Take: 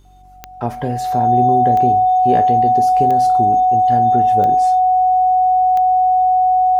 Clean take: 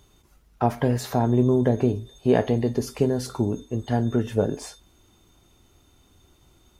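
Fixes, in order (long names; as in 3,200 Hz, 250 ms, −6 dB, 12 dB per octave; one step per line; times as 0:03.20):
click removal
hum removal 46.9 Hz, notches 8
notch filter 740 Hz, Q 30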